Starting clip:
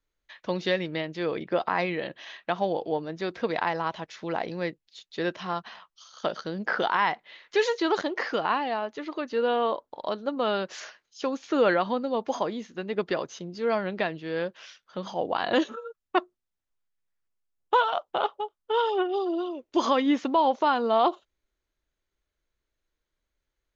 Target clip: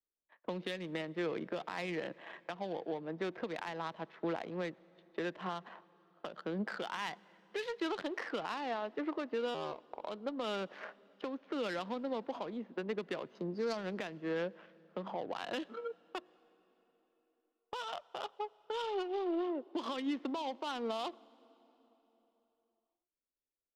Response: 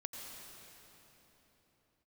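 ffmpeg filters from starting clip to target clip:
-filter_complex "[0:a]agate=range=-14dB:threshold=-45dB:ratio=16:detection=peak,adynamicsmooth=sensitivity=3.5:basefreq=870,acrossover=split=180 4400:gain=0.141 1 0.2[link_01][link_02][link_03];[link_01][link_02][link_03]amix=inputs=3:normalize=0,acrossover=split=170|3000[link_04][link_05][link_06];[link_05]acompressor=threshold=-36dB:ratio=6[link_07];[link_04][link_07][link_06]amix=inputs=3:normalize=0,alimiter=level_in=6.5dB:limit=-24dB:level=0:latency=1:release=370,volume=-6.5dB,asettb=1/sr,asplit=3[link_08][link_09][link_10];[link_08]atrim=end=9.544[link_11];[link_09]atrim=start=9.54:end=10.02,asetpts=PTS-STARTPTS,afade=type=in:duration=0.004:curve=qsin,afade=type=out:start_time=0.476:duration=0.004:curve=qsin,aeval=exprs='val(0)*sin(2*PI*74*n/s)':channel_layout=same[link_12];[link_10]atrim=start=10.016[link_13];[link_11][link_12]acrossfade=duration=0.004:curve1=hsin:curve2=qsin[link_14];[link_14][link_13]acrossfade=duration=0.004:curve1=qsin:curve2=hsin,asettb=1/sr,asplit=3[link_15][link_16][link_17];[link_15]atrim=end=13.354[link_18];[link_16]atrim=start=13.35:end=13.77,asetpts=PTS-STARTPTS,afade=type=in:duration=0.004:curve=qsin,afade=type=out:start_time=0.416:duration=0.004:curve=qsin,highshelf=frequency=3900:width_type=q:width=3:gain=6.5[link_19];[link_17]atrim=start=13.766[link_20];[link_18][link_19]acrossfade=duration=0.004:curve1=hsin:curve2=qsin[link_21];[link_21][link_20]acrossfade=duration=0.004:curve1=qsin:curve2=hsin,asplit=2[link_22][link_23];[1:a]atrim=start_sample=2205[link_24];[link_23][link_24]afir=irnorm=-1:irlink=0,volume=-18.5dB[link_25];[link_22][link_25]amix=inputs=2:normalize=0,volume=2.5dB"

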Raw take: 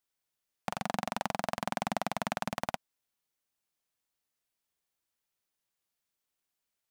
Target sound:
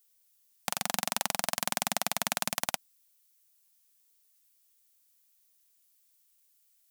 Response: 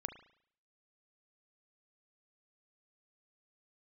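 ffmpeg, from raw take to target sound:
-af "crystalizer=i=8:c=0,volume=-4dB"

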